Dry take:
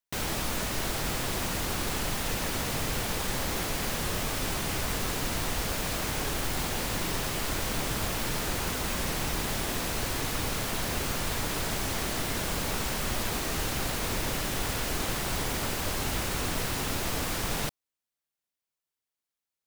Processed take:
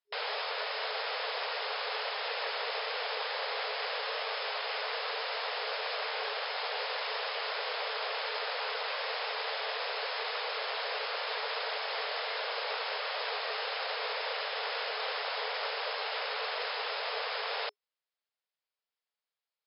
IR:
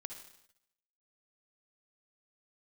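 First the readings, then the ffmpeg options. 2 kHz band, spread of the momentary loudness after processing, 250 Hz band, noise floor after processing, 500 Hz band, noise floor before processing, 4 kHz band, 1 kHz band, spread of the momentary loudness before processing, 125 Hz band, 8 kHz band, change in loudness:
0.0 dB, 0 LU, below −35 dB, below −85 dBFS, −1.0 dB, below −85 dBFS, −0.5 dB, 0.0 dB, 0 LU, below −40 dB, below −40 dB, −3.5 dB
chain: -af "afftfilt=real='re*between(b*sr/4096,410,5300)':imag='im*between(b*sr/4096,410,5300)':win_size=4096:overlap=0.75"

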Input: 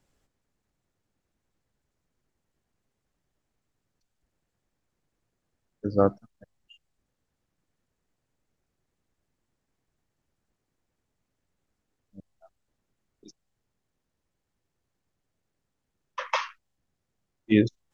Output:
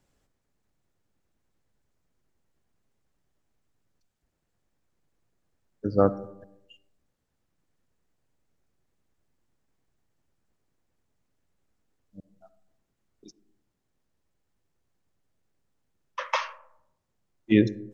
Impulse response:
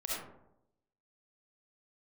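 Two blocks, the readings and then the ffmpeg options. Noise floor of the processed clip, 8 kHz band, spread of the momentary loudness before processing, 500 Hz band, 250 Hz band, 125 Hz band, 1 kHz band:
−78 dBFS, can't be measured, 16 LU, +0.5 dB, +1.0 dB, +1.0 dB, +0.5 dB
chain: -filter_complex "[0:a]asplit=2[link_01][link_02];[1:a]atrim=start_sample=2205,lowpass=2100[link_03];[link_02][link_03]afir=irnorm=-1:irlink=0,volume=-17.5dB[link_04];[link_01][link_04]amix=inputs=2:normalize=0"

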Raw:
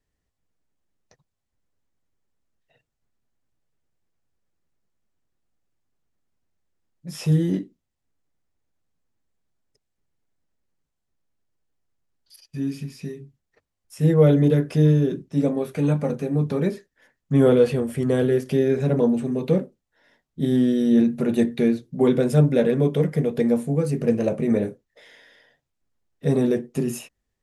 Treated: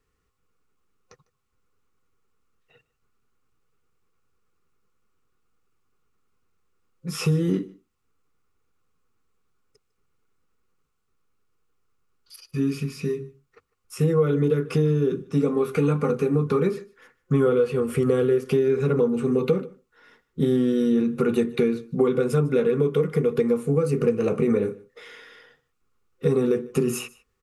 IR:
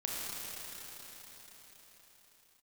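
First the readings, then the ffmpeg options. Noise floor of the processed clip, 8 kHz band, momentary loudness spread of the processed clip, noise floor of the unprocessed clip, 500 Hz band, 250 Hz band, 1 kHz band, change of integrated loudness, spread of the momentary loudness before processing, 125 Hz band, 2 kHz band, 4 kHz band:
−74 dBFS, can't be measured, 9 LU, −80 dBFS, +0.5 dB, −3.0 dB, +1.0 dB, −2.0 dB, 12 LU, −3.5 dB, +0.5 dB, 0.0 dB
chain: -af "superequalizer=7b=2:8b=0.398:10b=3.55:12b=1.58,acompressor=threshold=-22dB:ratio=6,aecho=1:1:151:0.075,volume=4dB"

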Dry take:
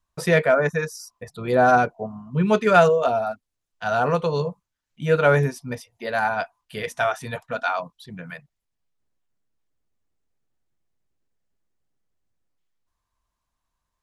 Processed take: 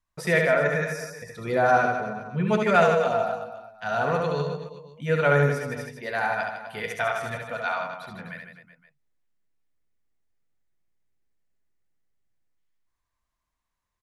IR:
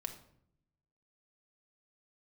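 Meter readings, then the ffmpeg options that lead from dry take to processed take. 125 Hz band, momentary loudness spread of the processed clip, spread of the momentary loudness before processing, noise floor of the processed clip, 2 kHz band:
−2.5 dB, 16 LU, 21 LU, −82 dBFS, −1.0 dB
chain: -filter_complex "[0:a]equalizer=frequency=2000:width=2.9:gain=6,asplit=2[link_01][link_02];[link_02]aecho=0:1:70|154|254.8|375.8|520.9:0.631|0.398|0.251|0.158|0.1[link_03];[link_01][link_03]amix=inputs=2:normalize=0,volume=-5.5dB"

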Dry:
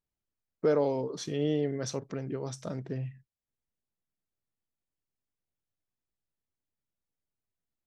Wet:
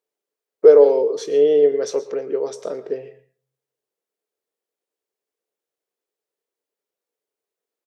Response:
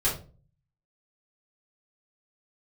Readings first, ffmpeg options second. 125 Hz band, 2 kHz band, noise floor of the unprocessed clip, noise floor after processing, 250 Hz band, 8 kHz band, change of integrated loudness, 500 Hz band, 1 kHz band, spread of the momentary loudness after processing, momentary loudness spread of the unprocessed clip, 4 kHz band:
below −10 dB, +5.5 dB, below −85 dBFS, below −85 dBFS, +3.0 dB, +5.0 dB, +16.0 dB, +17.0 dB, +7.5 dB, 18 LU, 10 LU, +5.0 dB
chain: -filter_complex "[0:a]highpass=frequency=440:width_type=q:width=4.9,asplit=2[link_01][link_02];[link_02]adelay=21,volume=-13dB[link_03];[link_01][link_03]amix=inputs=2:normalize=0,asplit=2[link_04][link_05];[1:a]atrim=start_sample=2205,lowshelf=frequency=500:gain=-8.5,adelay=110[link_06];[link_05][link_06]afir=irnorm=-1:irlink=0,volume=-23.5dB[link_07];[link_04][link_07]amix=inputs=2:normalize=0,volume=4.5dB"

